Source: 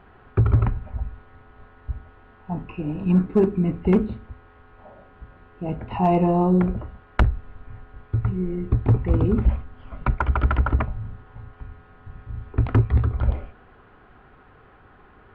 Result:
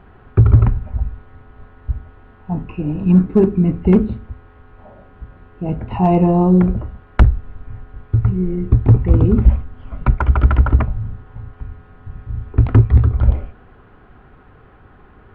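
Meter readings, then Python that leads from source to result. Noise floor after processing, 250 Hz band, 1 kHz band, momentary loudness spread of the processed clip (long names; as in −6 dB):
−46 dBFS, +6.5 dB, +2.5 dB, 17 LU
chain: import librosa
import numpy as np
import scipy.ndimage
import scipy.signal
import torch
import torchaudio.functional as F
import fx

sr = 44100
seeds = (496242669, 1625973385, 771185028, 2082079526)

y = fx.low_shelf(x, sr, hz=350.0, db=7.0)
y = F.gain(torch.from_numpy(y), 1.5).numpy()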